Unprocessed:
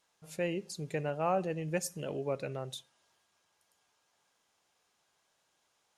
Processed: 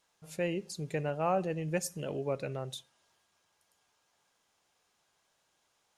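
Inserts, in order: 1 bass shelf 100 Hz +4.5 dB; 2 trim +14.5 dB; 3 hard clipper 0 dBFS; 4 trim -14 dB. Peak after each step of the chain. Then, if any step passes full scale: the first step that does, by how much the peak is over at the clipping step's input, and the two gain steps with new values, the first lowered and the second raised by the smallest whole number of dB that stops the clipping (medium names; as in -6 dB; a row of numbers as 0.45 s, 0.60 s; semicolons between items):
-19.0 dBFS, -4.5 dBFS, -4.5 dBFS, -18.5 dBFS; nothing clips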